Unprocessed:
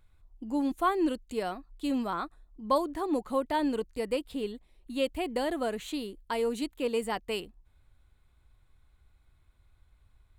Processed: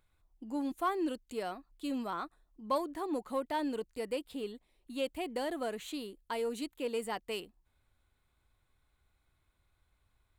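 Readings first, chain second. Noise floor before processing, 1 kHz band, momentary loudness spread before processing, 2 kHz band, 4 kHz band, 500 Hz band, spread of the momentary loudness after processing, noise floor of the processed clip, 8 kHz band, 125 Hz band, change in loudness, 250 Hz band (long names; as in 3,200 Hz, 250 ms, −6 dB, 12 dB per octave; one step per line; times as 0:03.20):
−66 dBFS, −5.0 dB, 9 LU, −5.0 dB, −4.5 dB, −5.5 dB, 9 LU, −76 dBFS, −3.5 dB, can't be measured, −5.5 dB, −6.0 dB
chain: low-shelf EQ 120 Hz −10.5 dB
in parallel at −8 dB: soft clipping −30 dBFS, distortion −10 dB
on the sum: high-shelf EQ 11,000 Hz +3 dB
level −6.5 dB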